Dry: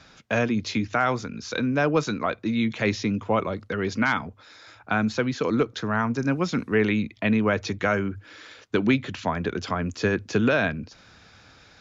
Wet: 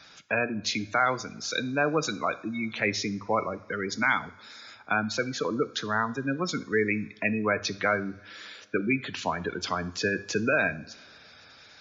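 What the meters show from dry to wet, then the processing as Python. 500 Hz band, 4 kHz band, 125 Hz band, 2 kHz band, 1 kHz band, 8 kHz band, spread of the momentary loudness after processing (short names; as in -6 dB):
-4.0 dB, +1.0 dB, -8.0 dB, 0.0 dB, -1.5 dB, n/a, 8 LU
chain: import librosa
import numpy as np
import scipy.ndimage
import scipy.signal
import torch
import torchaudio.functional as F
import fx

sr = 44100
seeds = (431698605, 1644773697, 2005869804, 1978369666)

y = fx.spec_gate(x, sr, threshold_db=-20, keep='strong')
y = fx.tilt_eq(y, sr, slope=2.5)
y = fx.rev_double_slope(y, sr, seeds[0], early_s=0.55, late_s=3.3, knee_db=-20, drr_db=13.5)
y = y * 10.0 ** (-1.5 / 20.0)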